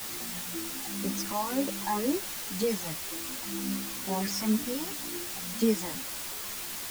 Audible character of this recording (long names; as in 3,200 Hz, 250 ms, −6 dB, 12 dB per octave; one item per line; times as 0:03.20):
phaser sweep stages 12, 2 Hz, lowest notch 430–1,800 Hz
a quantiser's noise floor 6 bits, dither triangular
a shimmering, thickened sound